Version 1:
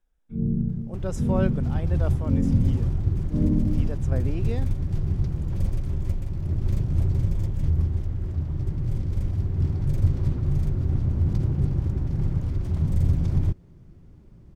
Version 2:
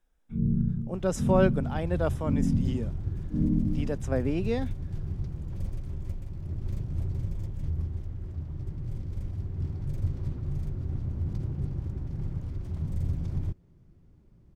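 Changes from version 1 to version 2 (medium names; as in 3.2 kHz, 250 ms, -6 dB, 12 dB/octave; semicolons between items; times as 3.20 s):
speech +4.5 dB; first sound: add Gaussian low-pass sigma 22 samples; second sound -8.5 dB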